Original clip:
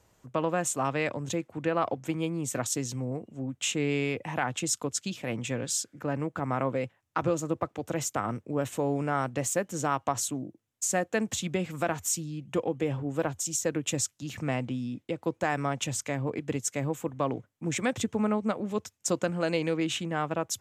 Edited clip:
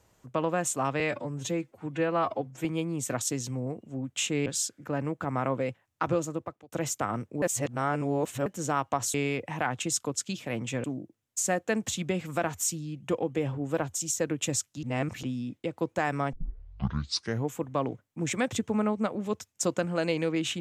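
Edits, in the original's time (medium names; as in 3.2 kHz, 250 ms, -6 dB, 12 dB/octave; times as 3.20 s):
1.00–2.10 s: stretch 1.5×
3.91–5.61 s: move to 10.29 s
7.32–7.87 s: fade out
8.57–9.61 s: reverse
14.28–14.68 s: reverse
15.78 s: tape start 1.22 s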